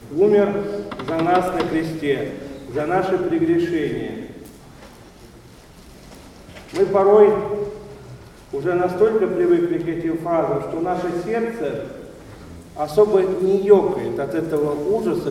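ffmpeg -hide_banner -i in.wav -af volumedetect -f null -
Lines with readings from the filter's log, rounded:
mean_volume: -20.3 dB
max_volume: -1.2 dB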